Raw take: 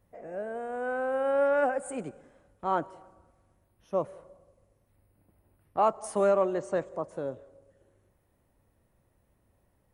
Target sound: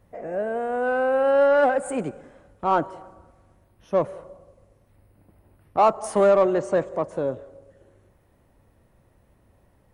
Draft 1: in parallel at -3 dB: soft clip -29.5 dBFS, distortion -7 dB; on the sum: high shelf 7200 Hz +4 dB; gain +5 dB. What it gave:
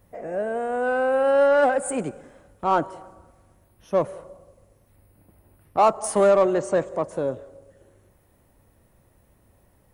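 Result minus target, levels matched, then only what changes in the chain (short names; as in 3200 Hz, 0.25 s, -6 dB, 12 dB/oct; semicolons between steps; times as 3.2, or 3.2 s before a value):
8000 Hz band +7.0 dB
change: high shelf 7200 Hz -7.5 dB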